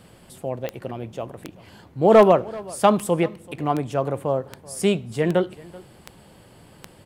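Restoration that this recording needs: de-click; inverse comb 384 ms -21.5 dB

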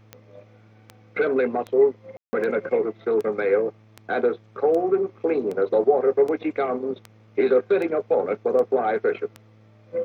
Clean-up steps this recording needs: de-click; de-hum 108.6 Hz, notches 8; room tone fill 2.17–2.33 s

